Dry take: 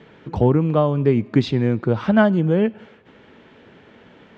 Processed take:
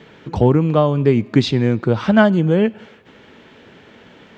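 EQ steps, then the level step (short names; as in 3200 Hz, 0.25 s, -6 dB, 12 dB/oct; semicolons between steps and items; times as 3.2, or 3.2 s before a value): high shelf 3800 Hz +9.5 dB; +2.5 dB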